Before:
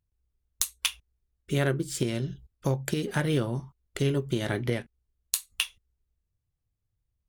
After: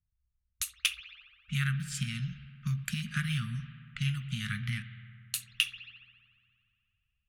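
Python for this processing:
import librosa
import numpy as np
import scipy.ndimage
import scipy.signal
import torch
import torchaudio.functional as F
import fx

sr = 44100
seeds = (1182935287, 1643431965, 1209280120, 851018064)

y = scipy.signal.sosfilt(scipy.signal.cheby1(5, 1.0, [220.0, 1200.0], 'bandstop', fs=sr, output='sos'), x)
y = fx.peak_eq(y, sr, hz=2600.0, db=7.5, octaves=0.39)
y = fx.rev_spring(y, sr, rt60_s=2.8, pass_ms=(58,), chirp_ms=35, drr_db=12.0)
y = fx.env_lowpass(y, sr, base_hz=1400.0, full_db=-28.0)
y = F.gain(torch.from_numpy(y), -3.0).numpy()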